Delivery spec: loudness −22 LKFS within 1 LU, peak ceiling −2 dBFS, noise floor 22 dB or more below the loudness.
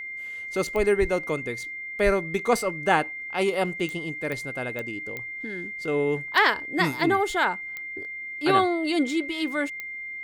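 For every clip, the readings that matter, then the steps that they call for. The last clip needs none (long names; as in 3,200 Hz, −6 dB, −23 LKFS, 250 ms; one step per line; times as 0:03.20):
number of clicks 7; interfering tone 2,100 Hz; level of the tone −33 dBFS; integrated loudness −26.0 LKFS; sample peak −6.0 dBFS; target loudness −22.0 LKFS
→ click removal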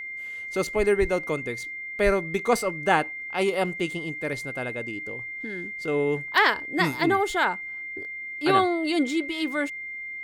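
number of clicks 0; interfering tone 2,100 Hz; level of the tone −33 dBFS
→ notch filter 2,100 Hz, Q 30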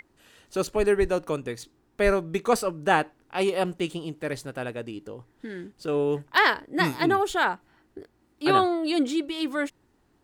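interfering tone none found; integrated loudness −25.5 LKFS; sample peak −6.5 dBFS; target loudness −22.0 LKFS
→ level +3.5 dB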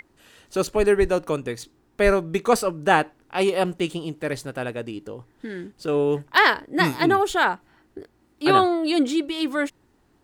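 integrated loudness −22.0 LKFS; sample peak −3.0 dBFS; background noise floor −63 dBFS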